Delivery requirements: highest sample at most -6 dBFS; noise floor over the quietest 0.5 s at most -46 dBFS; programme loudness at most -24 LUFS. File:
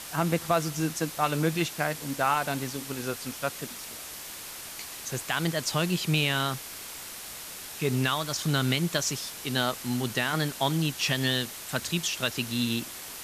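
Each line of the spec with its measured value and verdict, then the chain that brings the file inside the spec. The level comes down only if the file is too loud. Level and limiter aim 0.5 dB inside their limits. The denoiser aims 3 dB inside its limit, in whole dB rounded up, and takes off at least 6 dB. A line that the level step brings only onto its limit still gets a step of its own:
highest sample -12.5 dBFS: OK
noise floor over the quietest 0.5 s -41 dBFS: fail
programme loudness -29.0 LUFS: OK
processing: denoiser 8 dB, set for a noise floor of -41 dBFS

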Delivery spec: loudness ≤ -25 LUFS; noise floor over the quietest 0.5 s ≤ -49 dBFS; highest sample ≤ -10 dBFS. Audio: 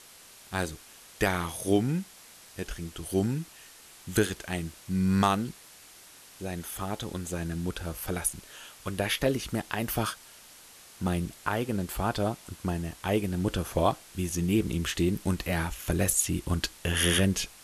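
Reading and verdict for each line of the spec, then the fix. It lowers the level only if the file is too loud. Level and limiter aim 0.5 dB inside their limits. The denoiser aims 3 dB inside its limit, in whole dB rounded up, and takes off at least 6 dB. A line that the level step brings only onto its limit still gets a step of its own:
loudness -30.0 LUFS: OK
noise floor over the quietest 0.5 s -52 dBFS: OK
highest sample -11.0 dBFS: OK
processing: none

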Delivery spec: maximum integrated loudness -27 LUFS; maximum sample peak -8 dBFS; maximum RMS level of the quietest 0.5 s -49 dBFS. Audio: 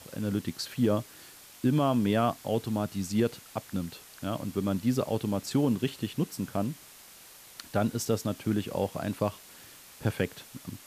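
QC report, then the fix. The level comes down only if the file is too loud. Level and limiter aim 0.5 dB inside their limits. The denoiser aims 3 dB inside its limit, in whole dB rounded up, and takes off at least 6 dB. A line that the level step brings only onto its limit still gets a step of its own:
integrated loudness -30.5 LUFS: OK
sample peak -13.0 dBFS: OK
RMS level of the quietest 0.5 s -52 dBFS: OK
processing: none

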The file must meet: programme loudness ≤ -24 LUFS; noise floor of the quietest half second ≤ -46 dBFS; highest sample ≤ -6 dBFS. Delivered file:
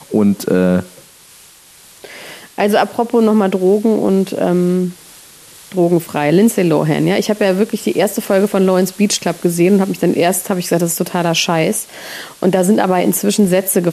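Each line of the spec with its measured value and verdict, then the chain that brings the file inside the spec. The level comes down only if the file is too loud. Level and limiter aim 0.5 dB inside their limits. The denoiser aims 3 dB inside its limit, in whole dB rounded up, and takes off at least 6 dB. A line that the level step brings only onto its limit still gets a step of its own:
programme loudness -14.5 LUFS: fail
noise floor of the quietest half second -43 dBFS: fail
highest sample -2.0 dBFS: fail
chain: gain -10 dB

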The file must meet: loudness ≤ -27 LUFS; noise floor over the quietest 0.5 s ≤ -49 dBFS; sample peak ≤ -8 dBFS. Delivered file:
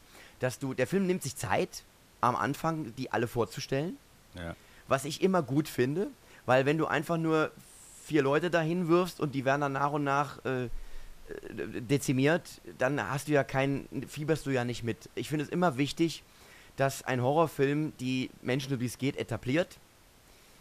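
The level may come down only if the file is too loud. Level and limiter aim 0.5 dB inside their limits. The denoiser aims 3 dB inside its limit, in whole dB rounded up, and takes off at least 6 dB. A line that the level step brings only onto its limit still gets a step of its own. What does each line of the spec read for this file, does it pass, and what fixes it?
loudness -30.5 LUFS: OK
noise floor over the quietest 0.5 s -59 dBFS: OK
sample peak -12.5 dBFS: OK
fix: none

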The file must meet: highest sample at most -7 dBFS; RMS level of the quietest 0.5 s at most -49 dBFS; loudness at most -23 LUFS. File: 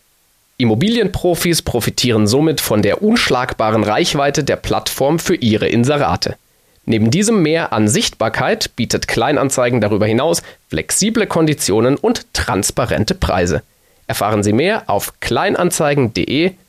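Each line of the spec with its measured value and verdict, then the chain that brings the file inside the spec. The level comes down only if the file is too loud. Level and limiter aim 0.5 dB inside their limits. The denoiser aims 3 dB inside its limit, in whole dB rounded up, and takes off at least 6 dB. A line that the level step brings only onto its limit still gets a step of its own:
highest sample -5.0 dBFS: fail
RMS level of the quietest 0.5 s -57 dBFS: OK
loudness -15.0 LUFS: fail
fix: gain -8.5 dB

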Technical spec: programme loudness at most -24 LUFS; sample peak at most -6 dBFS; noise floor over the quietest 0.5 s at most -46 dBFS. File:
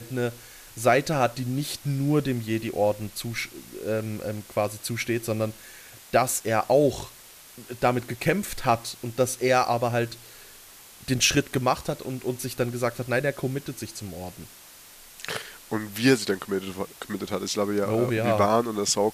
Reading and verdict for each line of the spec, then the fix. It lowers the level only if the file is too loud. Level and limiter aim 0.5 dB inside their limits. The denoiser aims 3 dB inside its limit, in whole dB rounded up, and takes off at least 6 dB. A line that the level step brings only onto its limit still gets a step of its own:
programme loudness -26.0 LUFS: OK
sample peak -8.0 dBFS: OK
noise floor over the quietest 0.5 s -48 dBFS: OK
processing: none

